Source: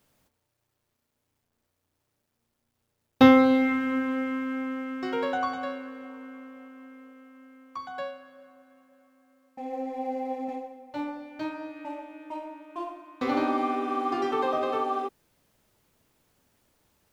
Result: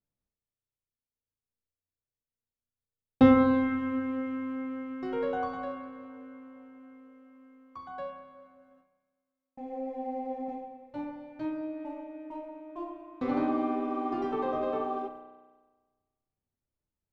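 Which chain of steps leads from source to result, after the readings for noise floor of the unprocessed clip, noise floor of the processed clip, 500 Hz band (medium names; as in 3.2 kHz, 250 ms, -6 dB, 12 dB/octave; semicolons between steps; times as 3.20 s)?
-79 dBFS, under -85 dBFS, -3.5 dB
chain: gate with hold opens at -49 dBFS; tilt EQ -3 dB/octave; spring tank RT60 1.3 s, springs 32 ms, chirp 30 ms, DRR 5.5 dB; trim -7.5 dB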